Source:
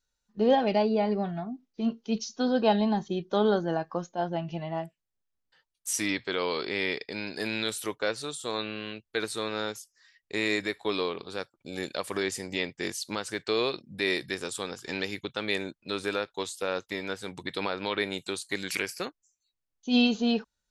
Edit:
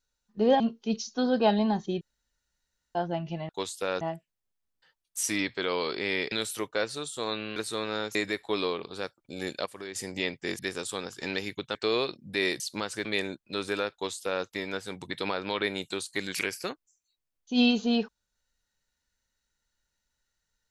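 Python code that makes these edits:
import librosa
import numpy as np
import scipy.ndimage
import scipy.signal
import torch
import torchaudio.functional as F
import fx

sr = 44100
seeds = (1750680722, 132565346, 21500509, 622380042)

y = fx.edit(x, sr, fx.cut(start_s=0.6, length_s=1.22),
    fx.room_tone_fill(start_s=3.23, length_s=0.94),
    fx.cut(start_s=7.02, length_s=0.57),
    fx.cut(start_s=8.83, length_s=0.37),
    fx.cut(start_s=9.79, length_s=0.72),
    fx.clip_gain(start_s=12.02, length_s=0.29, db=-10.5),
    fx.swap(start_s=12.95, length_s=0.45, other_s=14.25, other_length_s=1.16),
    fx.duplicate(start_s=16.29, length_s=0.52, to_s=4.71), tone=tone)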